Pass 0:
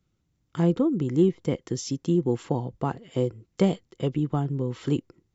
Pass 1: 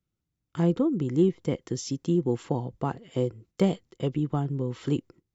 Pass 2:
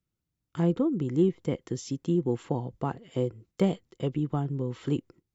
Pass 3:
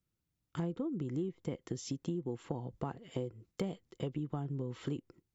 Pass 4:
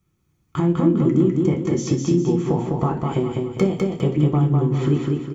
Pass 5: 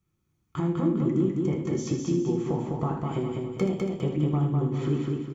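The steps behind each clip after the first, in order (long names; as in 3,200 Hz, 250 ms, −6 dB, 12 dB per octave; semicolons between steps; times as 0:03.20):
noise gate −51 dBFS, range −9 dB; level −1.5 dB
dynamic equaliser 5,400 Hz, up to −5 dB, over −57 dBFS, Q 1.6; level −1.5 dB
downward compressor 6 to 1, threshold −33 dBFS, peak gain reduction 14 dB; level −1 dB
repeating echo 202 ms, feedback 39%, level −3 dB; convolution reverb RT60 0.45 s, pre-delay 3 ms, DRR 1.5 dB; level +9 dB
single-tap delay 78 ms −8.5 dB; level −7.5 dB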